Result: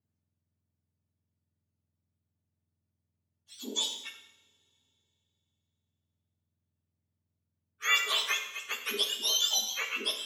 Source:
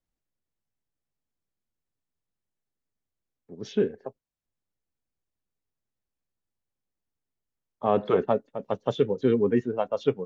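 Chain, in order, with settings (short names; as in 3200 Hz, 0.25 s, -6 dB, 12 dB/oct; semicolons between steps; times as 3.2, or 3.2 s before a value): spectrum mirrored in octaves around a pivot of 1200 Hz; two-slope reverb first 0.79 s, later 3.3 s, from -26 dB, DRR 3.5 dB; gain -1.5 dB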